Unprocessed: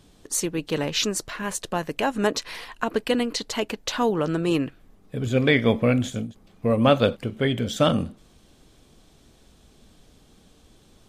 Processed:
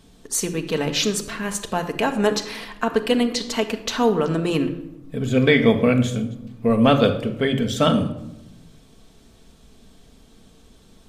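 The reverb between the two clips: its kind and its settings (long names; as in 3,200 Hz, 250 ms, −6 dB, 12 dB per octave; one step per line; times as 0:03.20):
rectangular room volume 2,900 cubic metres, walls furnished, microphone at 1.6 metres
level +1.5 dB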